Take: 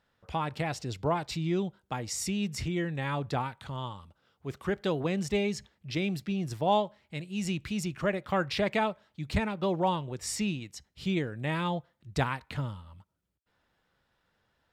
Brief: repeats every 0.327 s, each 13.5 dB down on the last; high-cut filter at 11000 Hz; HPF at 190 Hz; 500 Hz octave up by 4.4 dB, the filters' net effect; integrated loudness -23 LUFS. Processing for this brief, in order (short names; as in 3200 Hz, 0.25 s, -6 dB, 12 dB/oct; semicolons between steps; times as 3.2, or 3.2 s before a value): HPF 190 Hz; LPF 11000 Hz; bell 500 Hz +6 dB; feedback echo 0.327 s, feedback 21%, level -13.5 dB; gain +7.5 dB